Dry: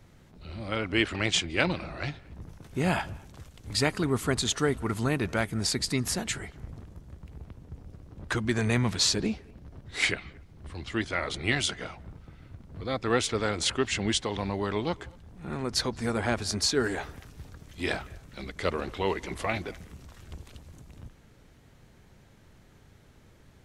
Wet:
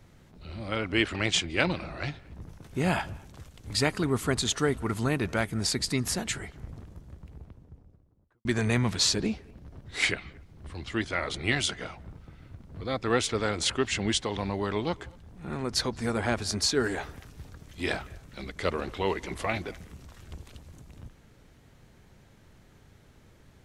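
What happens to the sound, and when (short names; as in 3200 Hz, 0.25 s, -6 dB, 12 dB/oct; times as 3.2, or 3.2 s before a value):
6.93–8.45 studio fade out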